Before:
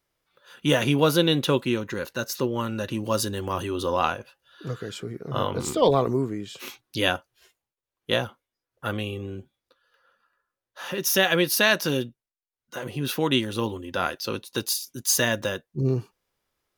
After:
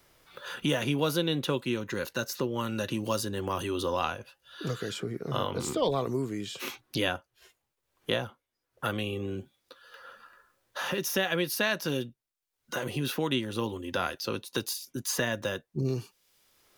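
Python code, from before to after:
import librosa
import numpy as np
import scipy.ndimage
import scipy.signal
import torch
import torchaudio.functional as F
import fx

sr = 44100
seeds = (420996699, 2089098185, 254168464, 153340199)

y = fx.band_squash(x, sr, depth_pct=70)
y = y * 10.0 ** (-5.5 / 20.0)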